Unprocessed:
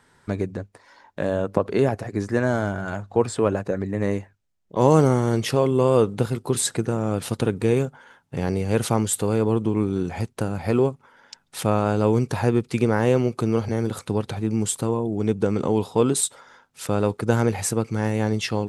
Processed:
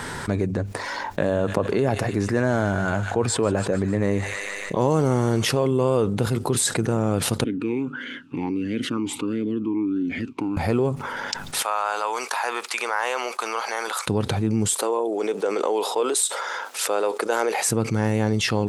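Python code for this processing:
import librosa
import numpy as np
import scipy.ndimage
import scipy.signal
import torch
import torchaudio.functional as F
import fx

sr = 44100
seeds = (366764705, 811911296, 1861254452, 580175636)

y = fx.echo_wet_highpass(x, sr, ms=150, feedback_pct=63, hz=1900.0, wet_db=-10, at=(1.29, 5.55), fade=0.02)
y = fx.vowel_sweep(y, sr, vowels='i-u', hz=1.5, at=(7.44, 10.57))
y = fx.ladder_highpass(y, sr, hz=760.0, resonance_pct=30, at=(11.62, 14.07))
y = fx.highpass(y, sr, hz=420.0, slope=24, at=(14.74, 17.67))
y = fx.env_flatten(y, sr, amount_pct=70)
y = y * 10.0 ** (-5.0 / 20.0)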